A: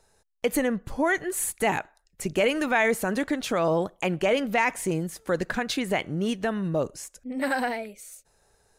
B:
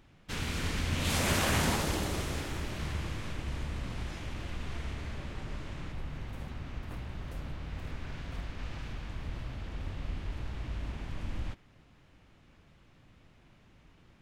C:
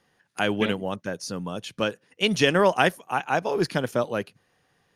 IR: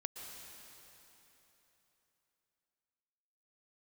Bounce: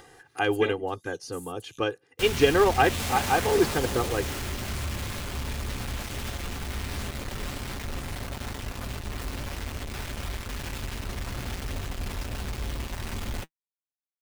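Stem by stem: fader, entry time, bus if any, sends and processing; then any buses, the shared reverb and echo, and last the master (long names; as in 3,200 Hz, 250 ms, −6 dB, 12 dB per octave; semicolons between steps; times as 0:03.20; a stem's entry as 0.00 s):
−8.5 dB, 0.00 s, no send, Butterworth high-pass 3,000 Hz 96 dB per octave; downward compressor 3 to 1, threshold −41 dBFS, peak gain reduction 12 dB; tape wow and flutter 110 cents
−3.0 dB, 1.90 s, no send, log-companded quantiser 2 bits; notch comb filter 160 Hz
−2.0 dB, 0.00 s, no send, high-shelf EQ 2,600 Hz −9.5 dB; comb filter 2.5 ms, depth 97%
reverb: not used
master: upward compression, threshold −39 dBFS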